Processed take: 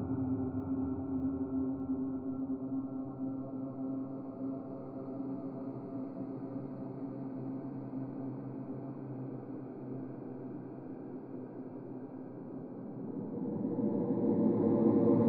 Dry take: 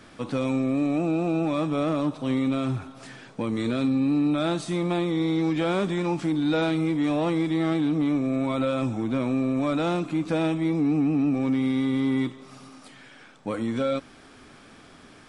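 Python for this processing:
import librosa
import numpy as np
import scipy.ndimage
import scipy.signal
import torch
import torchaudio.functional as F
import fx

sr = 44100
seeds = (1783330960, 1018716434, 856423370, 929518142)

y = fx.wiener(x, sr, points=25)
y = scipy.signal.lfilter(np.full(15, 1.0 / 15), 1.0, y)
y = fx.peak_eq(y, sr, hz=310.0, db=8.0, octaves=1.3)
y = fx.paulstretch(y, sr, seeds[0], factor=28.0, window_s=0.25, from_s=2.84)
y = fx.echo_feedback(y, sr, ms=600, feedback_pct=57, wet_db=-9.0)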